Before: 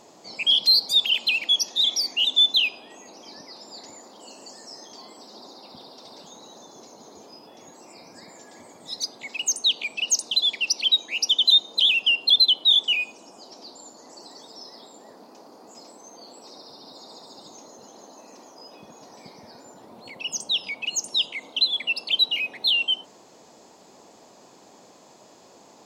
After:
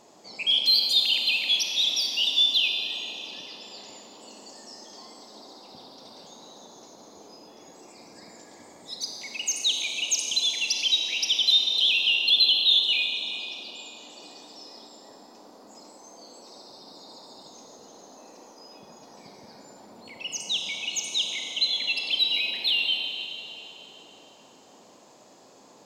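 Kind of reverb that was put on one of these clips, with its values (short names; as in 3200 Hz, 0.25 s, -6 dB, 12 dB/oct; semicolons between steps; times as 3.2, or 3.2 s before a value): Schroeder reverb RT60 2.8 s, combs from 30 ms, DRR 2.5 dB; gain -4 dB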